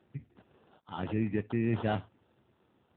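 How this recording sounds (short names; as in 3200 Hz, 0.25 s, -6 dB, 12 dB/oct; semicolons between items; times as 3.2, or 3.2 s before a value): aliases and images of a low sample rate 2200 Hz, jitter 0%; AMR-NB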